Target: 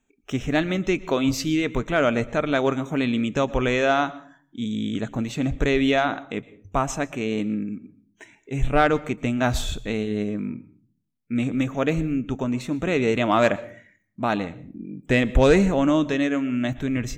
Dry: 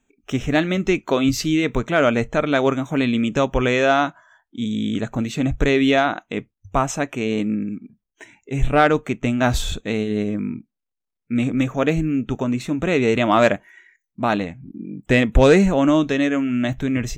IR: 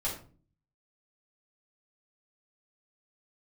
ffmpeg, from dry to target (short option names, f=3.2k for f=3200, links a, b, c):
-filter_complex "[0:a]asplit=2[a][b];[1:a]atrim=start_sample=2205,adelay=111[c];[b][c]afir=irnorm=-1:irlink=0,volume=-23dB[d];[a][d]amix=inputs=2:normalize=0,volume=-3.5dB"